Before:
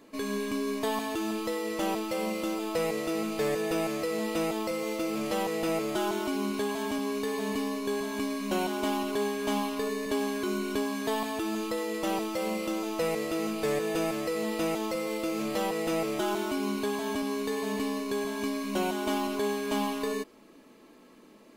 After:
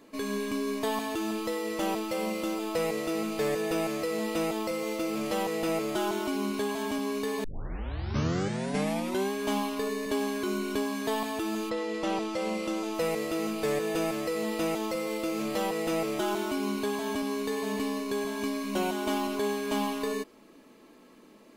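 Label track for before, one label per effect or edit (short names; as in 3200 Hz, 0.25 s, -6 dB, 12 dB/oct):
7.440000	7.440000	tape start 1.88 s
11.690000	12.930000	LPF 4800 Hz -> 11000 Hz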